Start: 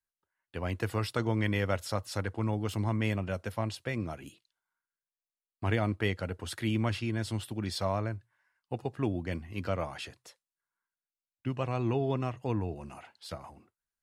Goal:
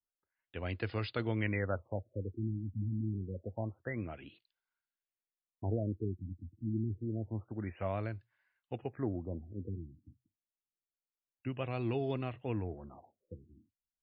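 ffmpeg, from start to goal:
-af "equalizer=f=160:t=o:w=0.67:g=-4,equalizer=f=1k:t=o:w=0.67:g=-6,equalizer=f=2.5k:t=o:w=0.67:g=3,afftfilt=real='re*lt(b*sr/1024,300*pow(5200/300,0.5+0.5*sin(2*PI*0.27*pts/sr)))':imag='im*lt(b*sr/1024,300*pow(5200/300,0.5+0.5*sin(2*PI*0.27*pts/sr)))':win_size=1024:overlap=0.75,volume=-3.5dB"

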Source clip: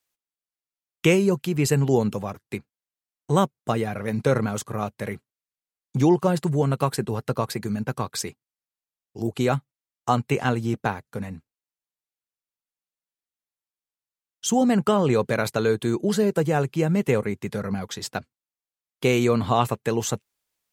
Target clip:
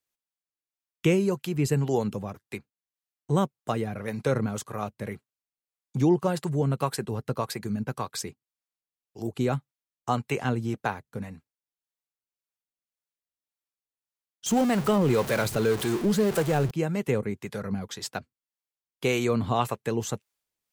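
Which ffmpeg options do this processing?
-filter_complex "[0:a]asettb=1/sr,asplit=3[a][b][c];[a]atrim=end=14.464[d];[b]atrim=start=14.46:end=16.71,asetpts=PTS-STARTPTS,afade=t=in:d=0.004:c=qsin,afade=t=out:st=2.246:d=0.004:c=qsin,aeval=exprs='val(0)+0.5*0.0631*sgn(val(0))':c=same[e];[c]atrim=start=16.706[f];[d][e]acrossfade=d=0.004:c1=hsin:c2=qsin[g];[g][f]acrossfade=d=0.004:c1=qsin:c2=hsin,acrossover=split=450[h][i];[h]aeval=exprs='val(0)*(1-0.5/2+0.5/2*cos(2*PI*1.8*n/s))':c=same[j];[i]aeval=exprs='val(0)*(1-0.5/2-0.5/2*cos(2*PI*1.8*n/s))':c=same[k];[j][k]amix=inputs=2:normalize=0,volume=-2dB"

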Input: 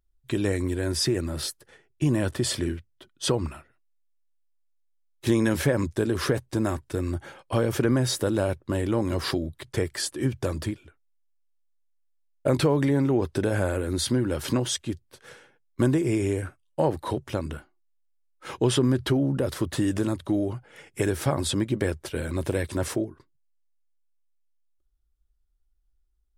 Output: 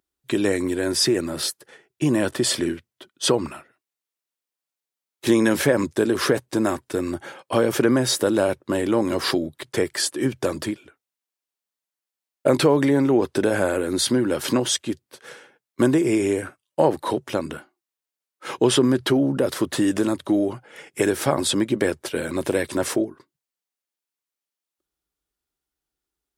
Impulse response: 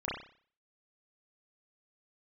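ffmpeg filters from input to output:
-af "highpass=210,volume=6dB"

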